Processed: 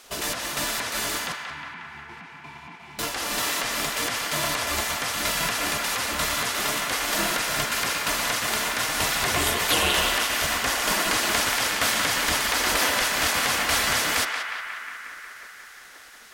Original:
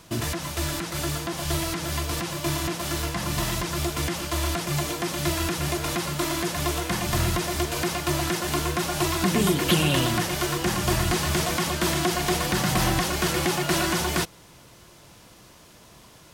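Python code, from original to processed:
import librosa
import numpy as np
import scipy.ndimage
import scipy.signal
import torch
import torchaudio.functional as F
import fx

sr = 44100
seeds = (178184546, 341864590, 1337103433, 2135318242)

p1 = fx.cheby_harmonics(x, sr, harmonics=(2,), levels_db=(-25,), full_scale_db=-8.0)
p2 = fx.vowel_filter(p1, sr, vowel='u', at=(1.32, 2.99))
p3 = fx.spec_gate(p2, sr, threshold_db=-10, keep='weak')
p4 = p3 + fx.echo_banded(p3, sr, ms=180, feedback_pct=80, hz=1600.0, wet_db=-3.5, dry=0)
y = F.gain(torch.from_numpy(p4), 3.5).numpy()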